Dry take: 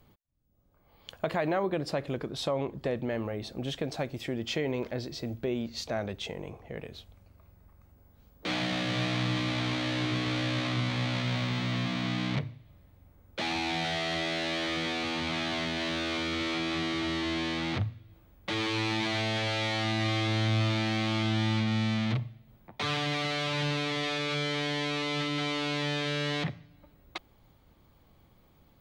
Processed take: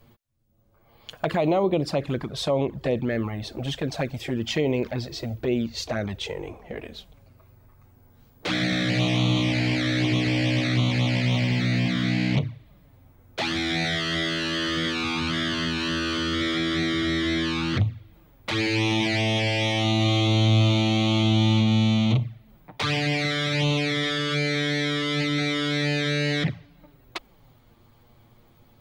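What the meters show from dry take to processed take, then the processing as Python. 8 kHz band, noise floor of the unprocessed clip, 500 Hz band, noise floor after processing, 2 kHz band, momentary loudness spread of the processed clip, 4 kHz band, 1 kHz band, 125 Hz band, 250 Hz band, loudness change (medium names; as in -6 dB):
+5.5 dB, -62 dBFS, +5.5 dB, -57 dBFS, +5.5 dB, 10 LU, +6.0 dB, +3.0 dB, +8.5 dB, +7.5 dB, +6.5 dB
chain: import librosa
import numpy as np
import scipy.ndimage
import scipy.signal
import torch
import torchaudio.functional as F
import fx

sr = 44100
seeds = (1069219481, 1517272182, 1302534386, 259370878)

y = fx.env_flanger(x, sr, rest_ms=9.3, full_db=-26.0)
y = F.gain(torch.from_numpy(y), 8.5).numpy()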